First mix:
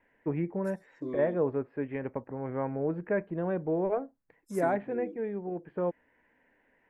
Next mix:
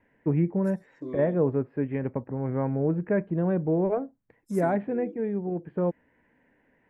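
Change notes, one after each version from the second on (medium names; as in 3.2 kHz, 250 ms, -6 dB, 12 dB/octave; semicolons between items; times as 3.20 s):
first voice: add peaking EQ 130 Hz +10 dB 2.7 oct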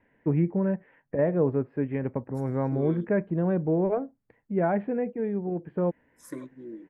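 second voice: entry +1.70 s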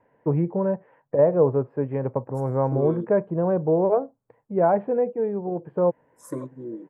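first voice: add bass shelf 340 Hz -9.5 dB; master: add graphic EQ 125/500/1000/2000/4000/8000 Hz +12/+9/+9/-7/-5/+6 dB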